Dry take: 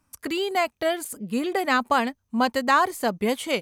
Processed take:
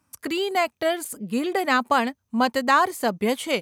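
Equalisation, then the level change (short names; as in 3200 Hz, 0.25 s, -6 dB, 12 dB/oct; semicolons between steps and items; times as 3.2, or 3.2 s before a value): HPF 75 Hz; +1.0 dB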